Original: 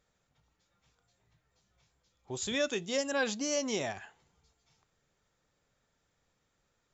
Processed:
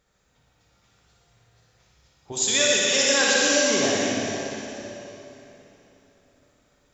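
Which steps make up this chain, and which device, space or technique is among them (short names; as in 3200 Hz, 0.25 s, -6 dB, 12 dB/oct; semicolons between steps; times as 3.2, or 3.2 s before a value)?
2.32–3.42 tilt +3 dB/oct; tunnel (flutter echo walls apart 10.3 m, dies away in 0.8 s; reverb RT60 3.4 s, pre-delay 70 ms, DRR -2.5 dB); gain +5.5 dB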